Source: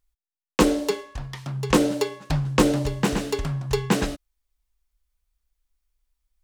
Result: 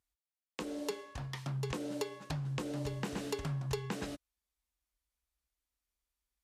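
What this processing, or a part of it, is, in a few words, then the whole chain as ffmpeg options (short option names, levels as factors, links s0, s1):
podcast mastering chain: -af "highpass=75,acompressor=threshold=0.0398:ratio=4,alimiter=limit=0.133:level=0:latency=1:release=227,volume=0.562" -ar 32000 -c:a libmp3lame -b:a 112k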